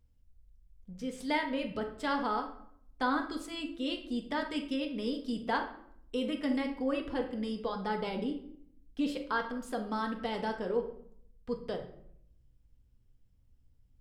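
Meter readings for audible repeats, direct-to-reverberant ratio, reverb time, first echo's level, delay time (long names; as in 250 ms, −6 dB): no echo audible, 2.5 dB, 0.65 s, no echo audible, no echo audible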